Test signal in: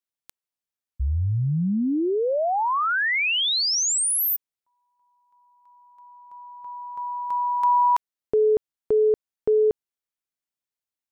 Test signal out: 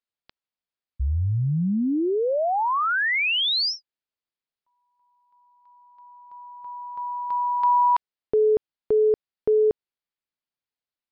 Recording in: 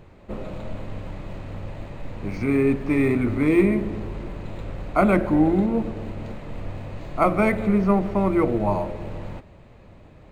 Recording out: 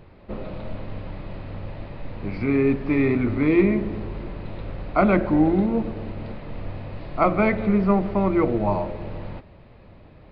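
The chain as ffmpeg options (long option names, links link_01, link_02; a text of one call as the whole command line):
ffmpeg -i in.wav -af "aresample=11025,aresample=44100" out.wav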